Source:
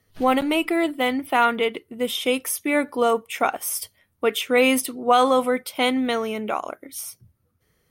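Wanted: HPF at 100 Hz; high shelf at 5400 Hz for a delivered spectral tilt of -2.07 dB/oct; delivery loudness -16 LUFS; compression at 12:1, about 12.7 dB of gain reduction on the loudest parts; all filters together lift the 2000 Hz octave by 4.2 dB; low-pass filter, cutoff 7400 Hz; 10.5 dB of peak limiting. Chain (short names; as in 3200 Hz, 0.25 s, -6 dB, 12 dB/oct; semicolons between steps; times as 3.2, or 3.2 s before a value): HPF 100 Hz; LPF 7400 Hz; bell 2000 Hz +4.5 dB; high shelf 5400 Hz +5 dB; compressor 12:1, threshold -24 dBFS; gain +17 dB; limiter -6.5 dBFS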